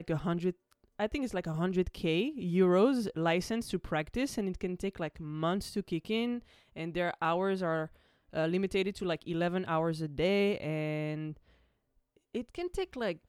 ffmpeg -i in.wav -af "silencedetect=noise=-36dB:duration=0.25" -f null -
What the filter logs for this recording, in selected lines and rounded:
silence_start: 0.51
silence_end: 1.00 | silence_duration: 0.49
silence_start: 6.39
silence_end: 6.77 | silence_duration: 0.38
silence_start: 7.85
silence_end: 8.35 | silence_duration: 0.50
silence_start: 11.32
silence_end: 12.35 | silence_duration: 1.03